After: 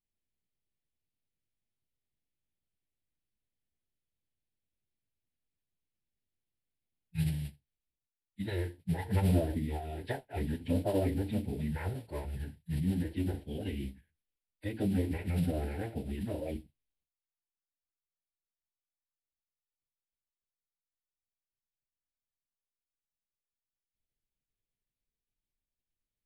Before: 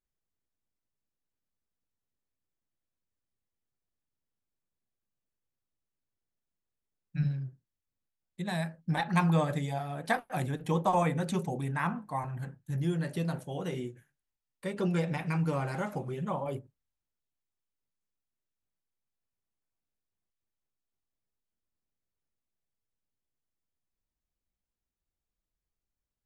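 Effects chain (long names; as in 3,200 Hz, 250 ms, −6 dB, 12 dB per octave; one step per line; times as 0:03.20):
treble cut that deepens with the level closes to 1,300 Hz, closed at −26.5 dBFS
noise that follows the level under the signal 19 dB
phase-vocoder pitch shift with formants kept −10.5 semitones
phaser with its sweep stopped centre 2,800 Hz, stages 4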